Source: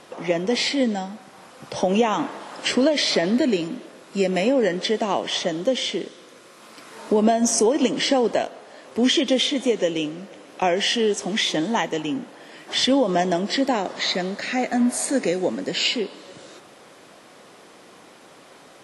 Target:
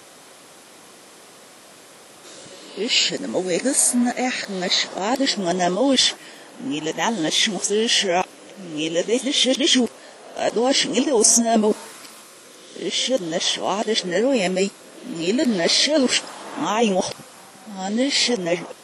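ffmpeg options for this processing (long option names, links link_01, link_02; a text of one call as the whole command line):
ffmpeg -i in.wav -af "areverse,crystalizer=i=2:c=0" out.wav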